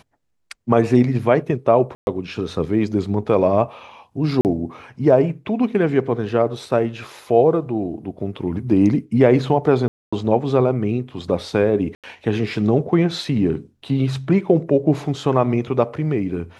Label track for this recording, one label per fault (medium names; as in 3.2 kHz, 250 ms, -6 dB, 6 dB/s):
1.950000	2.070000	dropout 121 ms
4.410000	4.450000	dropout 39 ms
9.880000	10.120000	dropout 245 ms
11.950000	12.040000	dropout 87 ms